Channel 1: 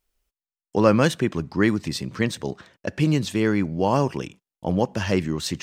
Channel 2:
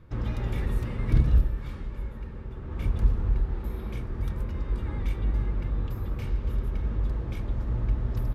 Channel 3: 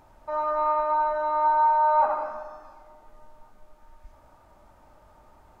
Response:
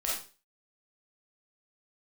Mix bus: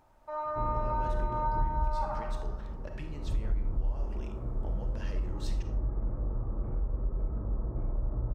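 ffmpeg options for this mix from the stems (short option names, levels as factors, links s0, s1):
-filter_complex "[0:a]highshelf=f=4300:g=-6,acompressor=threshold=0.0562:ratio=6,volume=0.355,asplit=3[s0][s1][s2];[s1]volume=0.15[s3];[1:a]lowpass=f=1100:w=0.5412,lowpass=f=1100:w=1.3066,adelay=450,volume=0.668,asplit=2[s4][s5];[s5]volume=0.562[s6];[2:a]volume=0.398[s7];[s2]apad=whole_len=387700[s8];[s4][s8]sidechaincompress=threshold=0.01:ratio=8:attack=16:release=1080[s9];[s0][s9]amix=inputs=2:normalize=0,highpass=f=210:p=1,acompressor=threshold=0.00501:ratio=6,volume=1[s10];[3:a]atrim=start_sample=2205[s11];[s3][s6]amix=inputs=2:normalize=0[s12];[s12][s11]afir=irnorm=-1:irlink=0[s13];[s7][s10][s13]amix=inputs=3:normalize=0,acompressor=threshold=0.0562:ratio=6"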